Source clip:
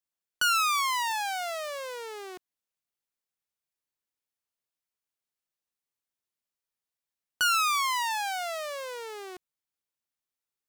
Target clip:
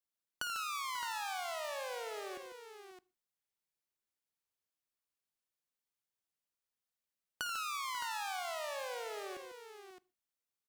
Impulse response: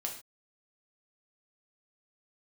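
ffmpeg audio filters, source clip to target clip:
-filter_complex "[0:a]acompressor=threshold=0.0178:ratio=5,aecho=1:1:55|85|147|540|615:0.178|0.2|0.316|0.15|0.335,asplit=2[s0][s1];[1:a]atrim=start_sample=2205,lowshelf=f=340:g=8[s2];[s1][s2]afir=irnorm=-1:irlink=0,volume=0.112[s3];[s0][s3]amix=inputs=2:normalize=0,volume=0.562"

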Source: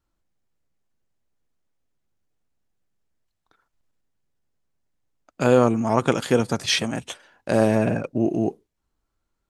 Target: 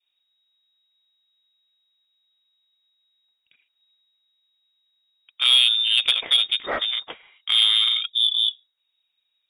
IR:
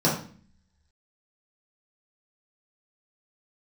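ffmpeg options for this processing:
-af "lowpass=f=3200:t=q:w=0.5098,lowpass=f=3200:t=q:w=0.6013,lowpass=f=3200:t=q:w=0.9,lowpass=f=3200:t=q:w=2.563,afreqshift=-3800,acontrast=90,adynamicequalizer=threshold=0.0178:dfrequency=1300:dqfactor=1.7:tfrequency=1300:tqfactor=1.7:attack=5:release=100:ratio=0.375:range=2.5:mode=cutabove:tftype=bell,volume=0.531"

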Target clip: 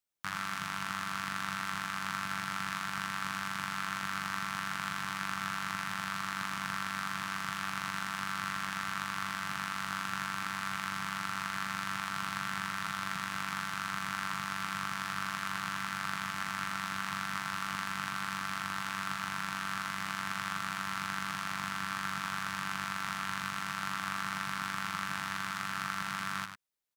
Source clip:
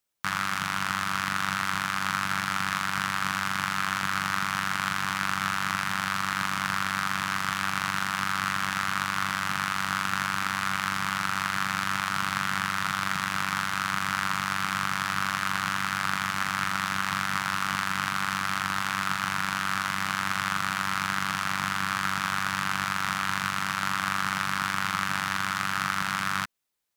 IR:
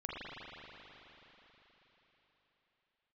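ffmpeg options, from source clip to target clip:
-af "aecho=1:1:99:0.376,volume=0.376"

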